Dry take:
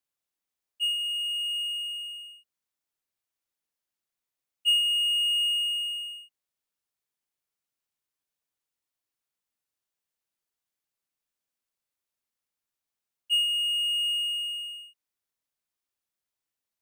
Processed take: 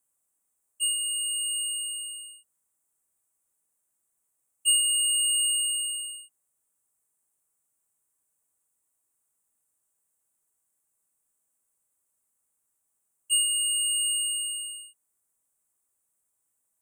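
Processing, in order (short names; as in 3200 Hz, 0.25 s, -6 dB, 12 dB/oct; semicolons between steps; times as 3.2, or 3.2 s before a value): EQ curve 1100 Hz 0 dB, 4800 Hz -16 dB, 8200 Hz +14 dB, 14000 Hz +3 dB; gain +5.5 dB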